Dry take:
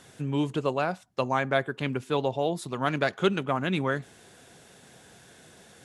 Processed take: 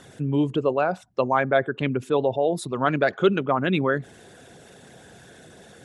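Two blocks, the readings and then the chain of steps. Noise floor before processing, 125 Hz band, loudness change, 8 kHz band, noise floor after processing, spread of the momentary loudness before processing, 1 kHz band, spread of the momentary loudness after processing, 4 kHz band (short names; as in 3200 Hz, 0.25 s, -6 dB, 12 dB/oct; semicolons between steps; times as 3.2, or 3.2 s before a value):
-54 dBFS, +3.5 dB, +5.0 dB, +2.5 dB, -50 dBFS, 6 LU, +4.5 dB, 5 LU, 0.0 dB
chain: formant sharpening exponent 1.5; gain +5 dB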